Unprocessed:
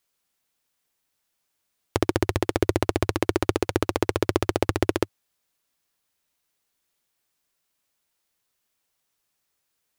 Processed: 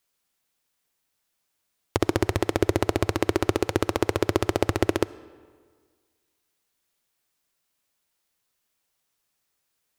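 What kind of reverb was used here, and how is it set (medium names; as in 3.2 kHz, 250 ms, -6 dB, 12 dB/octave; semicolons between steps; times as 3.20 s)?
algorithmic reverb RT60 1.7 s, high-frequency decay 0.7×, pre-delay 25 ms, DRR 18.5 dB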